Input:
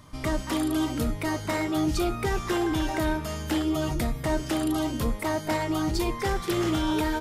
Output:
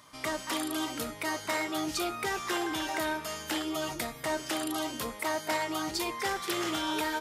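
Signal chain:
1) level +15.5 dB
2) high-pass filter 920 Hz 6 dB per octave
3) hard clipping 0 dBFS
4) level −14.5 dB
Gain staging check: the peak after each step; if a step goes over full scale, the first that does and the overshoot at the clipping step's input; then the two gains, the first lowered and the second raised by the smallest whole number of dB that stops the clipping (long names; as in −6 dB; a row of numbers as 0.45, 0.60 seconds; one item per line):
−1.0, −2.0, −2.0, −16.5 dBFS
no step passes full scale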